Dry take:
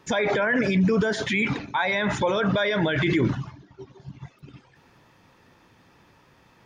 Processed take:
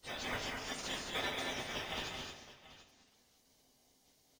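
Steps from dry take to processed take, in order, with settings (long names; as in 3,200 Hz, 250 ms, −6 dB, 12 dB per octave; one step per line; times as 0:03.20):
Butterworth high-pass 820 Hz 48 dB per octave
gate on every frequency bin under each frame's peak −20 dB weak
in parallel at −3.5 dB: decimation without filtering 31×
on the sum: time stretch by phase vocoder 0.66×
multi-tap delay 185/219/733 ms −8.5/−5/−16 dB
on a send at −6 dB: convolution reverb RT60 0.80 s, pre-delay 4 ms
on the sum: level +3.5 dB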